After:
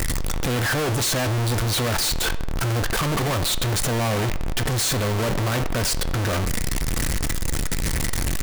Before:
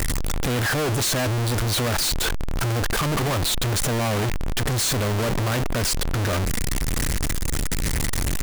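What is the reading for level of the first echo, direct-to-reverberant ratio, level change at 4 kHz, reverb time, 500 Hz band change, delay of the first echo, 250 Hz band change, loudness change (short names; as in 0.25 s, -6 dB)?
none, 9.5 dB, +0.5 dB, 0.95 s, 0.0 dB, none, 0.0 dB, 0.0 dB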